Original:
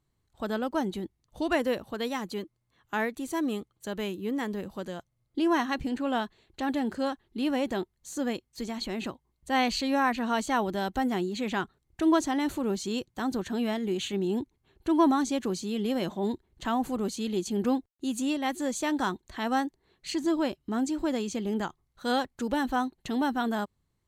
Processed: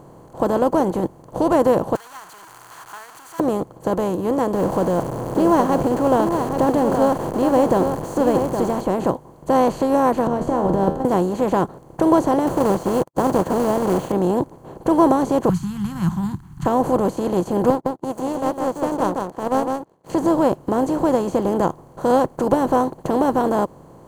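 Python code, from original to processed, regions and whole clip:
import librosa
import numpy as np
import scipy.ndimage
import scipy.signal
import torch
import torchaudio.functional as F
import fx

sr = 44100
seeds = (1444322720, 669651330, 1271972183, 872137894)

y = fx.chain(x, sr, fx.zero_step(step_db=-31.0),
    fx.ellip_highpass(hz=1400.0, order=4, stop_db=60), at=(1.95, 3.4))
y = fx.chain(y, sr, fx.zero_step(step_db=-39.5),
    fx.echo_single(ms=818, db=-11.5), at=(4.54, 8.81))
y = fx.chain(y, sr, fx.tilt_eq(slope=-4.5),
    fx.over_compress(threshold_db=-24.0, ratio=-0.5),
    fx.comb_fb(f0_hz=79.0, decay_s=0.41, harmonics='all', damping=0.0, mix_pct=70), at=(10.27, 11.05))
y = fx.chain(y, sr, fx.high_shelf(hz=4600.0, db=-5.5),
    fx.quant_companded(bits=4), at=(12.47, 14.12))
y = fx.chain(y, sr, fx.ellip_bandstop(low_hz=190.0, high_hz=1400.0, order=3, stop_db=60),
    fx.low_shelf_res(hz=210.0, db=14.0, q=1.5), at=(15.49, 16.66))
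y = fx.chain(y, sr, fx.highpass(hz=95.0, slope=12),
    fx.power_curve(exponent=2.0),
    fx.echo_single(ms=157, db=-7.0), at=(17.7, 20.1))
y = fx.bin_compress(y, sr, power=0.4)
y = fx.graphic_eq(y, sr, hz=(125, 500, 1000, 2000, 4000), db=(11, 10, 6, -10, -9))
y = fx.upward_expand(y, sr, threshold_db=-32.0, expansion=1.5)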